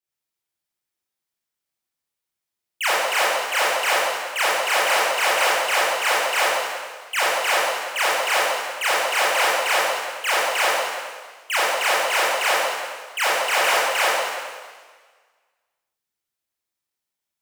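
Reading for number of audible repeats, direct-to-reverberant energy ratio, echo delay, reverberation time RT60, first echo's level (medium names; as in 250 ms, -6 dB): no echo, -9.0 dB, no echo, 1.5 s, no echo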